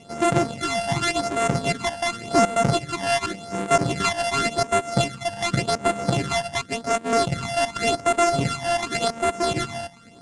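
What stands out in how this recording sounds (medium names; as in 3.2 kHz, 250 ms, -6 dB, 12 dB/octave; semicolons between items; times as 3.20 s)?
a buzz of ramps at a fixed pitch in blocks of 64 samples; phasing stages 12, 0.89 Hz, lowest notch 370–4400 Hz; IMA ADPCM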